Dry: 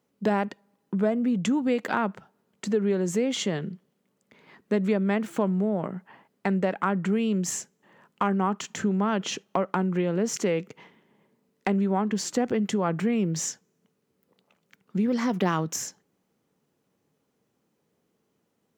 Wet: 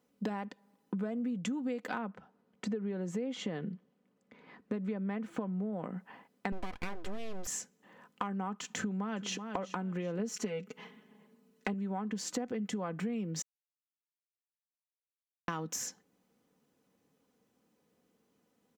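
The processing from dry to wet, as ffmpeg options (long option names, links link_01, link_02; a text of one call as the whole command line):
ffmpeg -i in.wav -filter_complex "[0:a]asettb=1/sr,asplit=3[link_01][link_02][link_03];[link_01]atrim=end=1.984[link_04];[link_02]atrim=start=1.98:end=5.73,asetpts=PTS-STARTPTS,afade=type=in:duration=0.004:curve=qsin,afade=type=out:start_time=3.746:duration=0.004:curve=qsin,lowpass=frequency=2200:poles=1[link_05];[link_03]atrim=start=5.726[link_06];[link_04][link_05]acrossfade=duration=0.004:curve1=hsin:curve2=qsin[link_07];[link_07][link_06]acrossfade=duration=0.004:curve1=qsin:curve2=hsin,asettb=1/sr,asplit=3[link_08][link_09][link_10];[link_08]atrim=end=6.524[link_11];[link_09]atrim=start=6.52:end=7.47,asetpts=PTS-STARTPTS,afade=type=in:duration=0.004:curve=qsin,afade=type=out:start_time=0.946:duration=0.004:curve=qsin,aeval=exprs='abs(val(0))':channel_layout=same[link_12];[link_10]atrim=start=7.466[link_13];[link_11][link_12]acrossfade=duration=0.004:curve1=hsin:curve2=qsin[link_14];[link_14][link_13]acrossfade=duration=0.004:curve1=qsin:curve2=hsin,asplit=2[link_15][link_16];[link_16]afade=type=in:start_time=8.78:duration=0.01,afade=type=out:start_time=9.5:duration=0.01,aecho=0:1:380|760|1140:0.177828|0.0622398|0.0217839[link_17];[link_15][link_17]amix=inputs=2:normalize=0,asettb=1/sr,asplit=3[link_18][link_19][link_20];[link_18]atrim=end=10.194[link_21];[link_19]atrim=start=10.19:end=11.74,asetpts=PTS-STARTPTS,afade=type=in:duration=0.004:curve=qsin,afade=type=out:start_time=1.546:duration=0.004:curve=qsin,aecho=1:1:4.7:0.8,atrim=end_sample=68355[link_22];[link_20]atrim=start=11.736[link_23];[link_21][link_22]acrossfade=duration=0.004:curve1=hsin:curve2=qsin[link_24];[link_24][link_23]acrossfade=duration=0.004:curve1=qsin:curve2=hsin,asplit=3[link_25][link_26][link_27];[link_25]atrim=end=13.42,asetpts=PTS-STARTPTS,afade=type=out:start_time=13.416:duration=0.004:curve=hsin[link_28];[link_26]atrim=start=13.42:end=15.48,asetpts=PTS-STARTPTS,volume=0[link_29];[link_27]atrim=start=15.48,asetpts=PTS-STARTPTS,afade=type=in:duration=0.004:curve=hsin[link_30];[link_28][link_29][link_30]concat=n=3:v=0:a=1,aecho=1:1:4:0.4,acompressor=threshold=-32dB:ratio=6,volume=-1.5dB" out.wav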